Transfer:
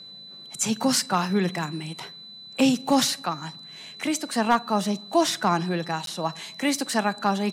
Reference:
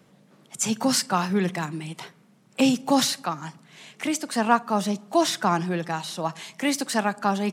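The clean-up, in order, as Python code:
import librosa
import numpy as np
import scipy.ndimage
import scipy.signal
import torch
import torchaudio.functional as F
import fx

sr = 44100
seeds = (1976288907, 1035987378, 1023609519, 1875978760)

y = fx.fix_declip(x, sr, threshold_db=-10.0)
y = fx.notch(y, sr, hz=4000.0, q=30.0)
y = fx.fix_interpolate(y, sr, at_s=(6.06,), length_ms=12.0)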